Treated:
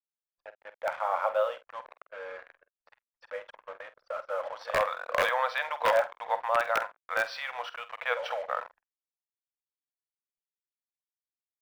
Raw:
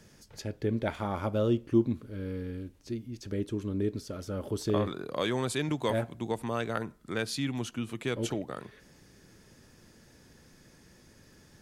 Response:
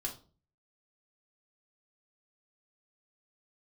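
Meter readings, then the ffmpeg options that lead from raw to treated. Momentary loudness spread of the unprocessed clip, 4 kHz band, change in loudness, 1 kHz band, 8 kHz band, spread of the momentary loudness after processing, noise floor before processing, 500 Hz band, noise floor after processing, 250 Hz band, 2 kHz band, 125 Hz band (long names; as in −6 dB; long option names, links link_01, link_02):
11 LU, −1.0 dB, +2.5 dB, +9.0 dB, −7.5 dB, 18 LU, −59 dBFS, +1.0 dB, below −85 dBFS, −27.5 dB, +9.0 dB, below −25 dB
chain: -filter_complex "[0:a]asplit=2[link_01][link_02];[1:a]atrim=start_sample=2205,asetrate=42336,aresample=44100[link_03];[link_02][link_03]afir=irnorm=-1:irlink=0,volume=-15dB[link_04];[link_01][link_04]amix=inputs=2:normalize=0,afftfilt=real='re*between(b*sr/4096,470,6000)':imag='im*between(b*sr/4096,470,6000)':win_size=4096:overlap=0.75,aecho=1:1:70|140|210:0.0668|0.0314|0.0148,dynaudnorm=framelen=240:gausssize=9:maxgain=11.5dB,acrusher=bits=5:mix=0:aa=0.5,aeval=exprs='(mod(3.16*val(0)+1,2)-1)/3.16':channel_layout=same,acrossover=split=600 2000:gain=0.158 1 0.0708[link_05][link_06][link_07];[link_05][link_06][link_07]amix=inputs=3:normalize=0,anlmdn=0.0158,asplit=2[link_08][link_09];[link_09]adelay=48,volume=-13.5dB[link_10];[link_08][link_10]amix=inputs=2:normalize=0,adynamicequalizer=threshold=0.00708:dfrequency=2900:dqfactor=0.7:tfrequency=2900:tqfactor=0.7:attack=5:release=100:ratio=0.375:range=1.5:mode=boostabove:tftype=highshelf"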